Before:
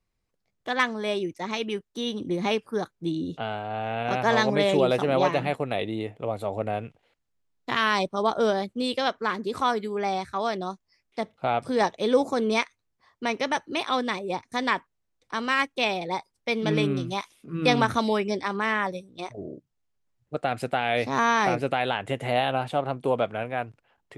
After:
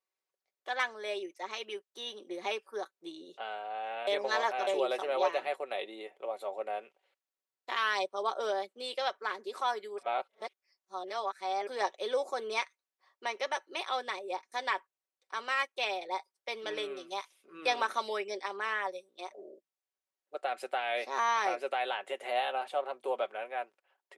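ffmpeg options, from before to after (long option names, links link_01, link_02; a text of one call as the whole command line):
ffmpeg -i in.wav -filter_complex "[0:a]asplit=5[link_01][link_02][link_03][link_04][link_05];[link_01]atrim=end=4.072[link_06];[link_02]atrim=start=4.068:end=4.672,asetpts=PTS-STARTPTS,areverse[link_07];[link_03]atrim=start=4.668:end=9.982[link_08];[link_04]atrim=start=9.978:end=11.672,asetpts=PTS-STARTPTS,areverse[link_09];[link_05]atrim=start=11.668[link_10];[link_06][link_07]acrossfade=duration=0.004:curve1=hsin:curve2=hsin[link_11];[link_11][link_08]acrossfade=duration=0.004:curve1=hsin:curve2=hsin[link_12];[link_12][link_09]acrossfade=duration=0.004:curve1=hsin:curve2=hsin[link_13];[link_13][link_10]acrossfade=duration=0.004:curve1=hsin:curve2=hsin,highpass=frequency=420:width=0.5412,highpass=frequency=420:width=1.3066,aecho=1:1:5.3:0.5,volume=-8dB" out.wav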